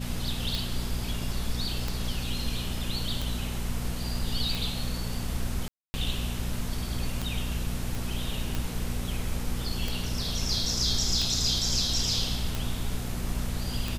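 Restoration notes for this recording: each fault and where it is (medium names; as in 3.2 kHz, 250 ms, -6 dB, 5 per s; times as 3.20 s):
hum 60 Hz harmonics 4 -34 dBFS
tick 45 rpm
5.68–5.94 s: dropout 260 ms
7.95 s: pop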